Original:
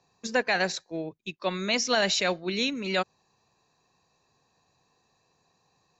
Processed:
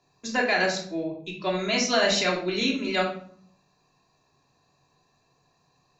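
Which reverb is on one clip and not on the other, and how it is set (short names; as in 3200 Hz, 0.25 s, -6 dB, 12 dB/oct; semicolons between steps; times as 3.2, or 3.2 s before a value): shoebox room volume 780 m³, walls furnished, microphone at 3.1 m; gain -2 dB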